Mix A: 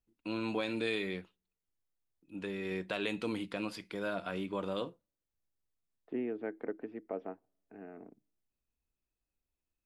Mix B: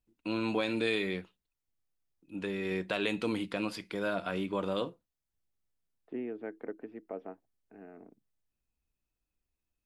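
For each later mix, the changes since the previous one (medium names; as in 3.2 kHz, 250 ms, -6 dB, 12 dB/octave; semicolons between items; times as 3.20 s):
first voice +4.0 dB; reverb: off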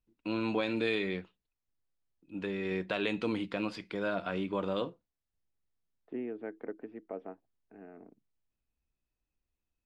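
master: add distance through air 86 m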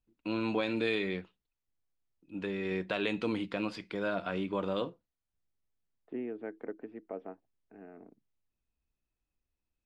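no change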